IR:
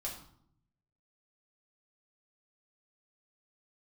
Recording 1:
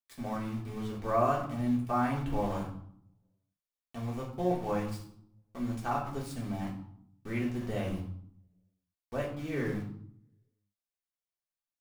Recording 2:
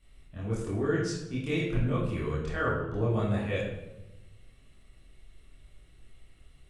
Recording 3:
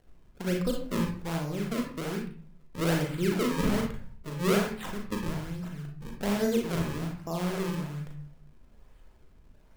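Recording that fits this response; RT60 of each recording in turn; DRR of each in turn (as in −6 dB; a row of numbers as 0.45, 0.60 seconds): 1; 0.65, 1.0, 0.40 seconds; −4.5, −8.5, 0.5 decibels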